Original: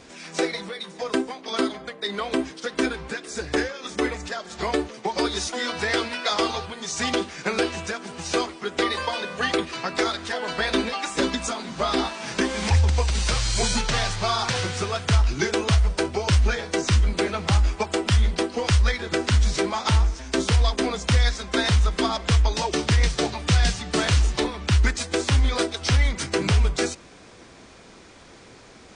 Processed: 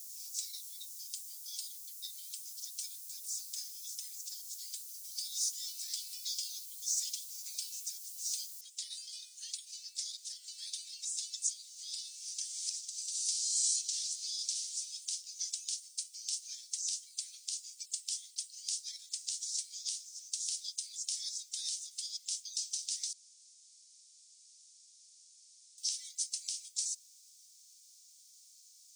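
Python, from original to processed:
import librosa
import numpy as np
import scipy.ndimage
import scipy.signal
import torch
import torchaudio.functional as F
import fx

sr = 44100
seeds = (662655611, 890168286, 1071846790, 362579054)

y = fx.noise_floor_step(x, sr, seeds[0], at_s=8.61, before_db=-47, after_db=-68, tilt_db=0.0)
y = fx.edit(y, sr, fx.room_tone_fill(start_s=23.13, length_s=2.65), tone=tone)
y = scipy.signal.sosfilt(scipy.signal.cheby2(4, 80, 1000.0, 'highpass', fs=sr, output='sos'), y)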